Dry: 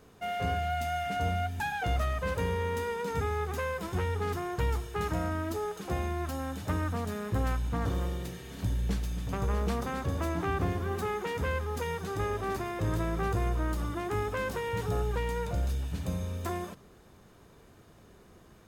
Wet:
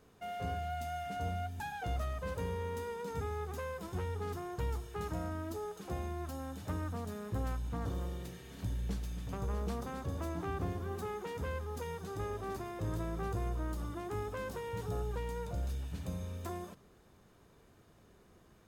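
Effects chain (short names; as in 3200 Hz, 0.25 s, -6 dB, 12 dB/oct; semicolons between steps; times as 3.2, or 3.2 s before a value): dynamic EQ 2100 Hz, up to -5 dB, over -48 dBFS, Q 1; gain -6.5 dB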